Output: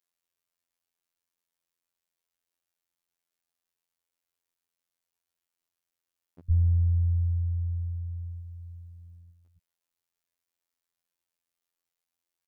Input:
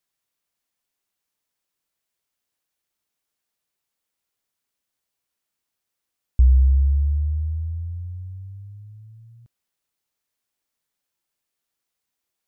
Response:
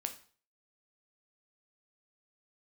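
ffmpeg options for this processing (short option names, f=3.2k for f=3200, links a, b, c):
-filter_complex "[0:a]asplit=3[a][b][c];[a]afade=t=out:st=8.3:d=0.02[d];[b]aecho=1:1:6.9:0.94,afade=t=in:st=8.3:d=0.02,afade=t=out:st=9.18:d=0.02[e];[c]afade=t=in:st=9.18:d=0.02[f];[d][e][f]amix=inputs=3:normalize=0,acrossover=split=190[g][h];[g]adelay=110[i];[i][h]amix=inputs=2:normalize=0,afftfilt=real='hypot(re,im)*cos(PI*b)':imag='0':win_size=2048:overlap=0.75,volume=-3dB"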